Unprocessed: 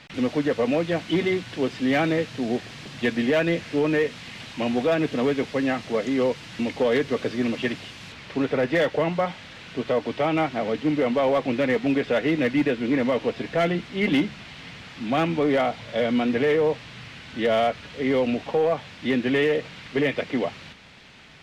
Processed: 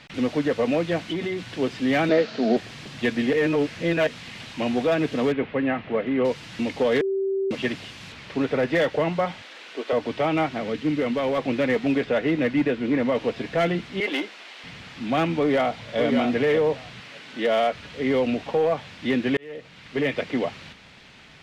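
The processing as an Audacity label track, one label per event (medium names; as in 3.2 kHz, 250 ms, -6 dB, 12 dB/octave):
0.970000	1.510000	compression, threshold -24 dBFS
2.090000	2.570000	cabinet simulation 220–6500 Hz, peaks and dips at 220 Hz +9 dB, 430 Hz +7 dB, 650 Hz +10 dB, 1.4 kHz +7 dB, 4.4 kHz +7 dB
3.330000	4.070000	reverse
5.320000	6.250000	low-pass 2.8 kHz 24 dB/octave
7.010000	7.510000	bleep 388 Hz -21.5 dBFS
9.420000	9.930000	high-pass 320 Hz 24 dB/octave
10.570000	11.380000	peaking EQ 730 Hz -6 dB 1.1 oct
12.040000	13.150000	treble shelf 3.7 kHz -6.5 dB
14.000000	14.640000	high-pass 360 Hz 24 dB/octave
15.390000	15.990000	echo throw 590 ms, feedback 15%, level -6 dB
17.000000	17.730000	high-pass 230 Hz
19.370000	20.150000	fade in linear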